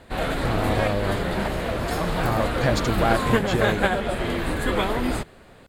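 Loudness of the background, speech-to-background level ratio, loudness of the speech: −25.0 LKFS, −2.0 dB, −27.0 LKFS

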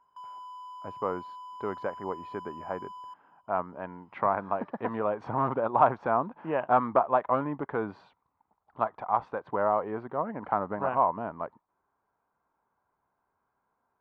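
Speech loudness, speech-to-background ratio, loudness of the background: −30.0 LKFS, 14.0 dB, −44.0 LKFS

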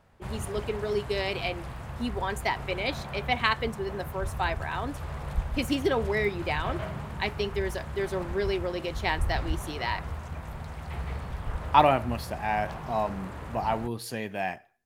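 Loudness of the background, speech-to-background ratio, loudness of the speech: −37.5 LKFS, 7.5 dB, −30.0 LKFS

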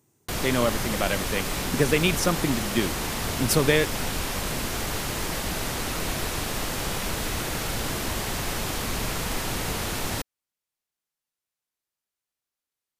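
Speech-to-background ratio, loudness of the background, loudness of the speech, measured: 2.5 dB, −28.5 LKFS, −26.0 LKFS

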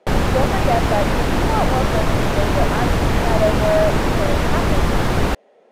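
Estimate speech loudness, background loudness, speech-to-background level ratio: −24.0 LKFS, −19.5 LKFS, −4.5 dB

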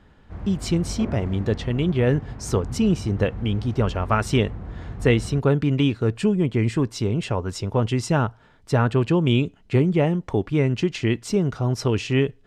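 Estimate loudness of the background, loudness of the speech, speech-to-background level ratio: −35.5 LKFS, −23.0 LKFS, 12.5 dB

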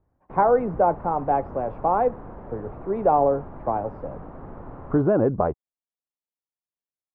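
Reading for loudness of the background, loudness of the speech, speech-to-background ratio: −41.5 LKFS, −23.5 LKFS, 18.0 dB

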